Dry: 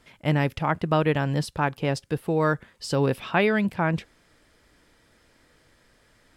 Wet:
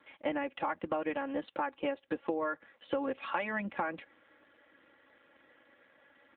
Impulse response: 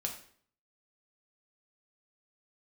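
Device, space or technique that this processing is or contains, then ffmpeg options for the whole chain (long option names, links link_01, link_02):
voicemail: -af "highpass=340,lowpass=3000,aecho=1:1:3.6:0.92,acompressor=threshold=-29dB:ratio=10" -ar 8000 -c:a libopencore_amrnb -b:a 7400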